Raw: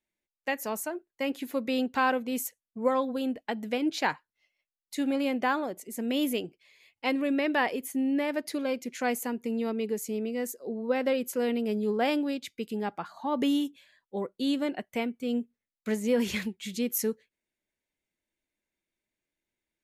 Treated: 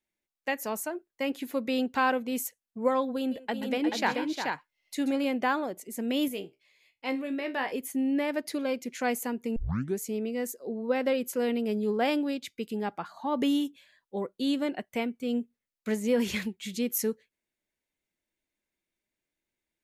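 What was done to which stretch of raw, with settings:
0:03.18–0:05.25: multi-tap delay 131/133/355/433 ms −16.5/−14/−8.5/−4.5 dB
0:06.28–0:07.72: tuned comb filter 66 Hz, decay 0.21 s, mix 80%
0:09.56: tape start 0.42 s

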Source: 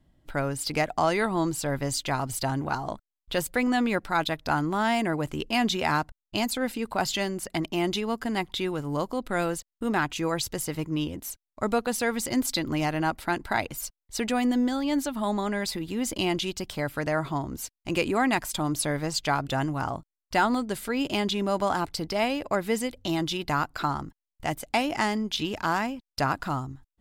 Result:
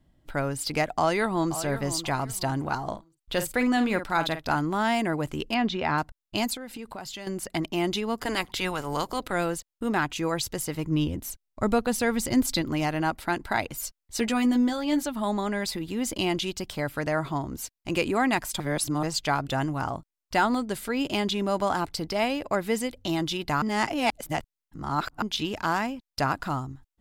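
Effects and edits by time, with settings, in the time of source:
0:00.86–0:01.55: delay throw 530 ms, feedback 25%, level −12 dB
0:02.82–0:04.56: double-tracking delay 49 ms −10 dB
0:05.54–0:05.98: high-frequency loss of the air 200 metres
0:06.54–0:07.27: downward compressor 5 to 1, threshold −35 dBFS
0:08.17–0:09.31: ceiling on every frequency bin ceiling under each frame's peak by 16 dB
0:10.84–0:12.62: low-shelf EQ 190 Hz +9.5 dB
0:13.78–0:15.03: double-tracking delay 13 ms −5.5 dB
0:18.60–0:19.03: reverse
0:23.62–0:25.22: reverse

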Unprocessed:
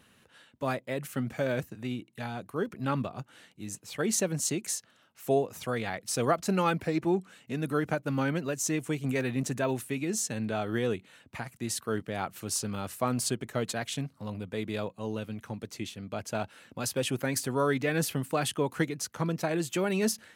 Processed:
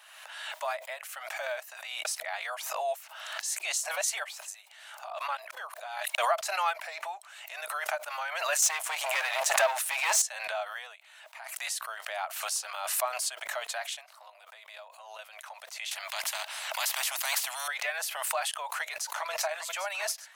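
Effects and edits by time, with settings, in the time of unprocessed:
0:02.05–0:06.18: reverse
0:08.62–0:10.22: leveller curve on the samples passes 3
0:10.73–0:11.65: duck −9 dB, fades 0.39 s quadratic
0:14.17–0:15.19: downward compressor 10 to 1, threshold −37 dBFS
0:15.91–0:17.68: every bin compressed towards the loudest bin 4 to 1
0:18.67–0:19.40: delay throw 400 ms, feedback 85%, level −11 dB
whole clip: Chebyshev high-pass filter 620 Hz, order 6; background raised ahead of every attack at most 39 dB per second

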